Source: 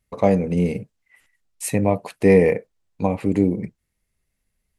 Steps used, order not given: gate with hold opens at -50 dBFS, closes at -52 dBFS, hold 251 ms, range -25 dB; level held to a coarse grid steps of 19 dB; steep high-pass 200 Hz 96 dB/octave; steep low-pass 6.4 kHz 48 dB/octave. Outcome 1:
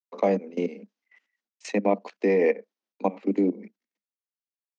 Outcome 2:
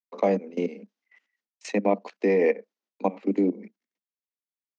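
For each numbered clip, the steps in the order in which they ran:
gate with hold > steep low-pass > level held to a coarse grid > steep high-pass; steep low-pass > level held to a coarse grid > gate with hold > steep high-pass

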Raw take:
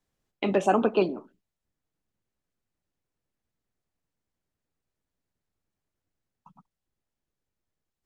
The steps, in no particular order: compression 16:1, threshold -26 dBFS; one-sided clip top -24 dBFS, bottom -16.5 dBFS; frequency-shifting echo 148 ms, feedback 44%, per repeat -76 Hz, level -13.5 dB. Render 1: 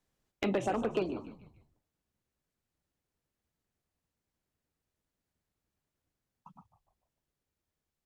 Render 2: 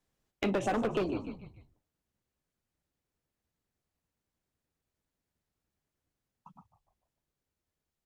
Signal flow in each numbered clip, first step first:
compression > frequency-shifting echo > one-sided clip; frequency-shifting echo > one-sided clip > compression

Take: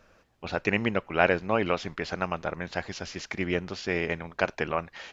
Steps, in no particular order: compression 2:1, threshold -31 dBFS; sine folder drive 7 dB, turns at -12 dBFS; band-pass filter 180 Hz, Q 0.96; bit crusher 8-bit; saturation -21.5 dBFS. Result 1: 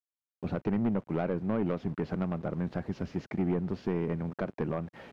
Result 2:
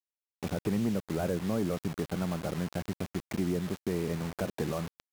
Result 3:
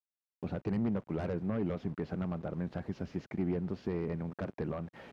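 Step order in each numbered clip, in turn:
bit crusher > compression > band-pass filter > sine folder > saturation; saturation > band-pass filter > bit crusher > sine folder > compression; bit crusher > sine folder > compression > band-pass filter > saturation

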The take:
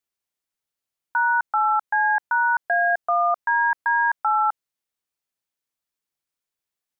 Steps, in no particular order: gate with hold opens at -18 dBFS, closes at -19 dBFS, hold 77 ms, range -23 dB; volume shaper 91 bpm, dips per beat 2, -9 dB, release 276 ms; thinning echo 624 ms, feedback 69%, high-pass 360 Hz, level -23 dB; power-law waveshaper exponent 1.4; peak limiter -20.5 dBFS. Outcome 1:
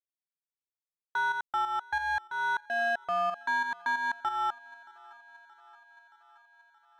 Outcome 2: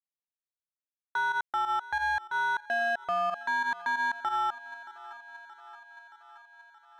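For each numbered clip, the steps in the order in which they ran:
power-law waveshaper > gate with hold > peak limiter > volume shaper > thinning echo; gate with hold > volume shaper > power-law waveshaper > thinning echo > peak limiter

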